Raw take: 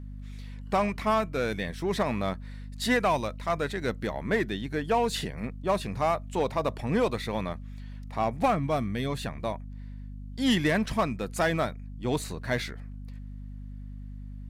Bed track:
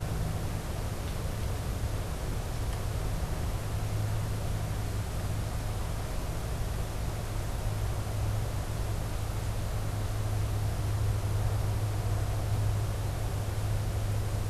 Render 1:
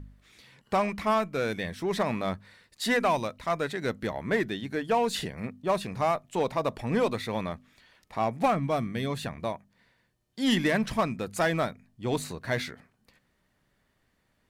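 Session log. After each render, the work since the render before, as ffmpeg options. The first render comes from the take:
-af "bandreject=f=50:t=h:w=4,bandreject=f=100:t=h:w=4,bandreject=f=150:t=h:w=4,bandreject=f=200:t=h:w=4,bandreject=f=250:t=h:w=4"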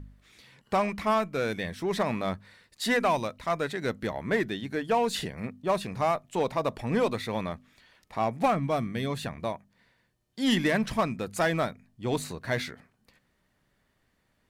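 -af anull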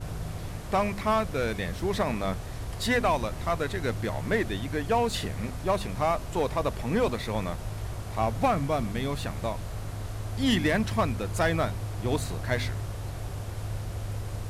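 -filter_complex "[1:a]volume=-3dB[a];[0:a][a]amix=inputs=2:normalize=0"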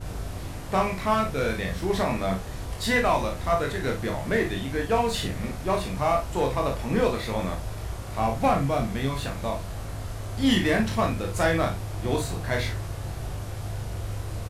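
-filter_complex "[0:a]asplit=2[a][b];[b]adelay=37,volume=-7.5dB[c];[a][c]amix=inputs=2:normalize=0,asplit=2[d][e];[e]aecho=0:1:22|53:0.562|0.376[f];[d][f]amix=inputs=2:normalize=0"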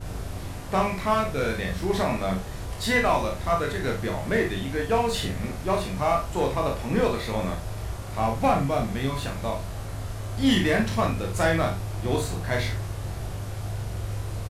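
-filter_complex "[0:a]asplit=2[a][b];[b]adelay=48,volume=-11dB[c];[a][c]amix=inputs=2:normalize=0"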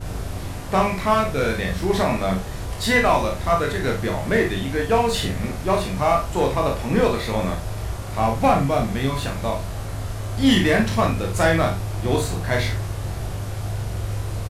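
-af "volume=4.5dB"

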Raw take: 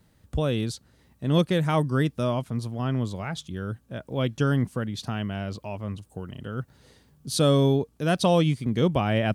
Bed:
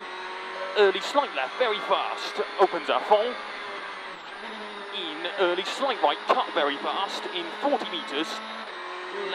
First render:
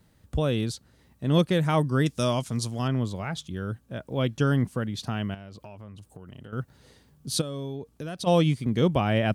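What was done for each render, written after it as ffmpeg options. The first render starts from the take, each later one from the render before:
-filter_complex "[0:a]asettb=1/sr,asplit=3[a][b][c];[a]atrim=end=2.064[d];[b]atrim=start=2.06:end=2.88,asetpts=PTS-STARTPTS,afade=t=in:d=0.004:c=qsin,afade=t=out:st=0.816:d=0.004:c=qsin,equalizer=f=6.9k:t=o:w=1.9:g=15[e];[c]atrim=start=2.876[f];[d][e]acrossfade=d=0.004:c1=hsin:c2=qsin[g];[g][f]acrossfade=d=0.004:c1=qsin:c2=hsin,asettb=1/sr,asplit=3[h][i][j];[h]atrim=end=5.344[k];[i]atrim=start=5.34:end=6.53,asetpts=PTS-STARTPTS,afade=t=in:d=0.004:c=qsin,afade=t=out:st=1.186:d=0.004:c=qsin,acompressor=threshold=-39dB:ratio=10:attack=3.2:release=140:knee=1:detection=peak[l];[j]atrim=start=6.526[m];[k][l]acrossfade=d=0.004:c1=hsin:c2=qsin[n];[n][m]acrossfade=d=0.004:c1=qsin:c2=hsin,asplit=3[o][p][q];[o]afade=t=out:st=7.4:d=0.02[r];[p]acompressor=threshold=-31dB:ratio=8:attack=3.2:release=140:knee=1:detection=peak,afade=t=in:st=7.4:d=0.02,afade=t=out:st=8.26:d=0.02[s];[q]afade=t=in:st=8.26:d=0.02[t];[r][s][t]amix=inputs=3:normalize=0"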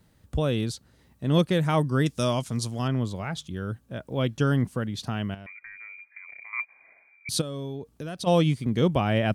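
-filter_complex "[0:a]asettb=1/sr,asplit=3[a][b][c];[a]atrim=end=5.464[d];[b]atrim=start=5.46:end=7.29,asetpts=PTS-STARTPTS,afade=t=in:d=0.004:c=qsin,afade=t=out:st=1.826:d=0.004:c=qsin,lowpass=f=2.1k:t=q:w=0.5098,lowpass=f=2.1k:t=q:w=0.6013,lowpass=f=2.1k:t=q:w=0.9,lowpass=f=2.1k:t=q:w=2.563,afreqshift=-2500[e];[c]atrim=start=7.286[f];[d][e]acrossfade=d=0.004:c1=hsin:c2=qsin[g];[g][f]acrossfade=d=0.004:c1=qsin:c2=hsin"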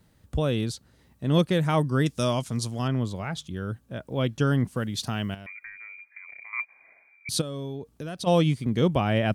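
-filter_complex "[0:a]asettb=1/sr,asplit=3[a][b][c];[a]atrim=end=4.764[d];[b]atrim=start=4.76:end=5.7,asetpts=PTS-STARTPTS,afade=t=in:d=0.004:c=qsin,afade=t=out:st=0.936:d=0.004:c=qsin,highshelf=f=3.7k:g=9.5[e];[c]atrim=start=5.696[f];[d][e]acrossfade=d=0.004:c1=hsin:c2=qsin[g];[g][f]acrossfade=d=0.004:c1=qsin:c2=hsin"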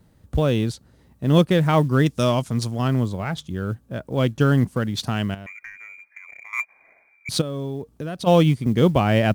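-filter_complex "[0:a]asplit=2[a][b];[b]adynamicsmooth=sensitivity=6.5:basefreq=1.6k,volume=-1dB[c];[a][c]amix=inputs=2:normalize=0,acrusher=bits=9:mode=log:mix=0:aa=0.000001"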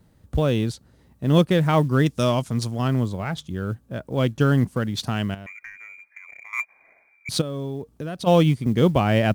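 -af "volume=-1dB"

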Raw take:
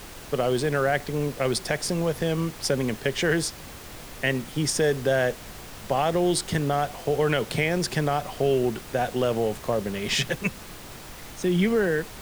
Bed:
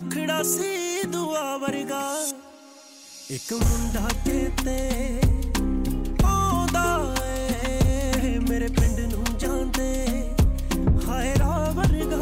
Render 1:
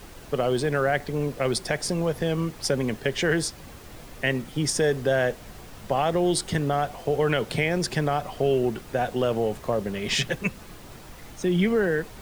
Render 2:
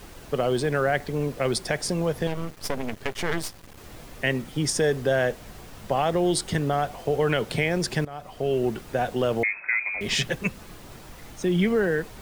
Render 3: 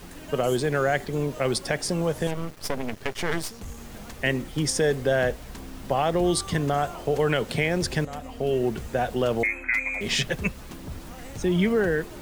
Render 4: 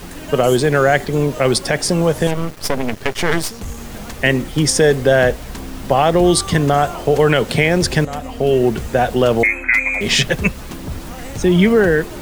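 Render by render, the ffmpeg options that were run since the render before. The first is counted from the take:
-af "afftdn=nr=6:nf=-42"
-filter_complex "[0:a]asettb=1/sr,asplit=3[a][b][c];[a]atrim=end=2.274[d];[b]atrim=start=2.27:end=3.78,asetpts=PTS-STARTPTS,afade=t=in:d=0.004:c=qsin,afade=t=out:st=1.506:d=0.004:c=qsin,aeval=exprs='max(val(0),0)':c=same[e];[c]atrim=start=3.776[f];[d][e]acrossfade=d=0.004:c1=hsin:c2=qsin[g];[g][f]acrossfade=d=0.004:c1=qsin:c2=hsin,asettb=1/sr,asplit=3[h][i][j];[h]atrim=end=9.434[k];[i]atrim=start=9.43:end=10.01,asetpts=PTS-STARTPTS,afade=t=in:d=0.004:c=qsin,afade=t=out:st=0.576:d=0.004:c=qsin,lowpass=f=2.2k:t=q:w=0.5098,lowpass=f=2.2k:t=q:w=0.6013,lowpass=f=2.2k:t=q:w=0.9,lowpass=f=2.2k:t=q:w=2.563,afreqshift=-2600[l];[j]atrim=start=10.006[m];[k][l]acrossfade=d=0.004:c1=hsin:c2=qsin[n];[n][m]acrossfade=d=0.004:c1=qsin:c2=hsin,asplit=2[o][p];[o]atrim=end=8.05,asetpts=PTS-STARTPTS,afade=t=out:st=8.046:d=0.004:c=hsin:silence=0.112202[q];[p]atrim=start=8.05,asetpts=PTS-STARTPTS,afade=t=in:d=0.63:silence=0.112202[r];[q][r]concat=n=2:v=0:a=1"
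-filter_complex "[1:a]volume=-18dB[a];[0:a][a]amix=inputs=2:normalize=0"
-af "volume=10dB,alimiter=limit=-1dB:level=0:latency=1"

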